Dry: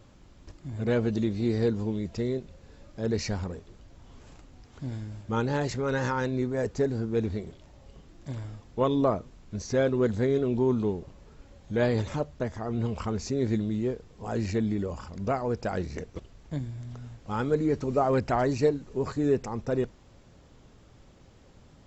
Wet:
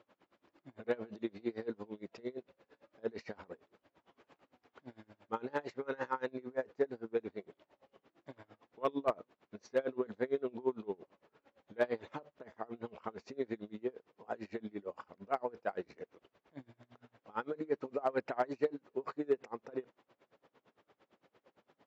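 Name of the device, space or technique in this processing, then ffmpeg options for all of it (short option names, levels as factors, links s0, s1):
helicopter radio: -af "highpass=390,lowpass=2700,aeval=exprs='val(0)*pow(10,-27*(0.5-0.5*cos(2*PI*8.8*n/s))/20)':c=same,asoftclip=type=hard:threshold=0.0944,volume=0.891"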